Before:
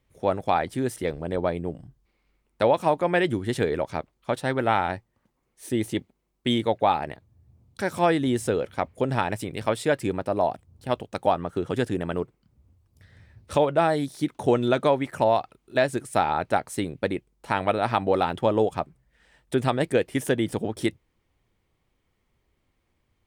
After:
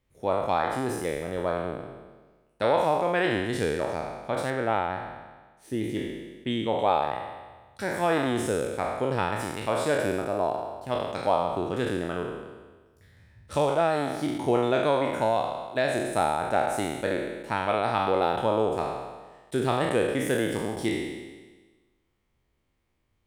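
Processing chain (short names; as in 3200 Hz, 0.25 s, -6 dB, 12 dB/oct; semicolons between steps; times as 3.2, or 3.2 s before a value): spectral trails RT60 1.33 s; 4.5–6.79 high shelf 3900 Hz -10.5 dB; gain -5.5 dB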